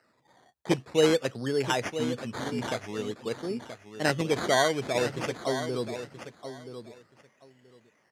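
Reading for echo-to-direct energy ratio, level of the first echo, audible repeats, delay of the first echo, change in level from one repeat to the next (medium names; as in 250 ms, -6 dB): -10.5 dB, -10.5 dB, 2, 978 ms, -15.0 dB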